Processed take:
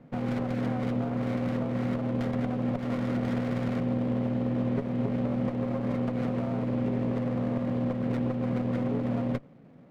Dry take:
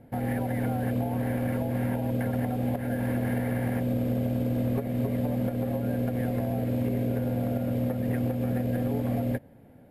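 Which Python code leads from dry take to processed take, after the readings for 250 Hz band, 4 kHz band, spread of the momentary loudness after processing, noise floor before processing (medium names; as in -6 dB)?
0.0 dB, no reading, 1 LU, -52 dBFS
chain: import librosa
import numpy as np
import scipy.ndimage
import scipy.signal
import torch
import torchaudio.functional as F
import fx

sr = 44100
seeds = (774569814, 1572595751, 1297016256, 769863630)

y = fx.cabinet(x, sr, low_hz=130.0, low_slope=24, high_hz=3700.0, hz=(160.0, 920.0, 1500.0), db=(6, -8, 7))
y = fx.running_max(y, sr, window=17)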